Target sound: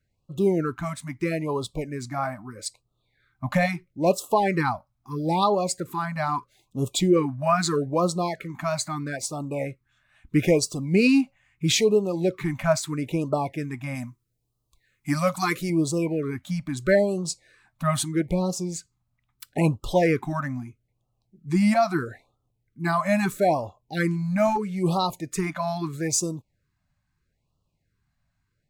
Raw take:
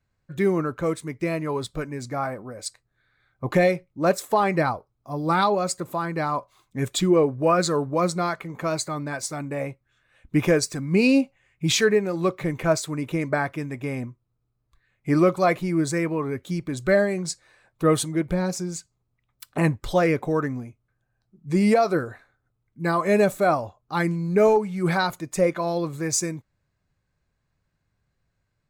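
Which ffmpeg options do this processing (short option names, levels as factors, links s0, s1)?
-filter_complex "[0:a]asettb=1/sr,asplit=3[s0][s1][s2];[s0]atrim=end=13.954[s3];[s1]atrim=start=13.95:end=15.7,asetpts=PTS-STARTPTS,afade=t=in:d=0.004:c=qsin,afade=t=out:st=1.746:d=0.004:c=qsin,bass=f=250:g=-3,treble=f=4000:g=10[s4];[s2]atrim=start=15.696[s5];[s3][s4]acrossfade=d=0.004:c1=hsin:c2=qsin[s6];[s6][s5]acrossfade=d=0.004:c1=qsin:c2=hsin,afftfilt=real='re*(1-between(b*sr/1024,370*pow(1900/370,0.5+0.5*sin(2*PI*0.77*pts/sr))/1.41,370*pow(1900/370,0.5+0.5*sin(2*PI*0.77*pts/sr))*1.41))':imag='im*(1-between(b*sr/1024,370*pow(1900/370,0.5+0.5*sin(2*PI*0.77*pts/sr))/1.41,370*pow(1900/370,0.5+0.5*sin(2*PI*0.77*pts/sr))*1.41))':win_size=1024:overlap=0.75"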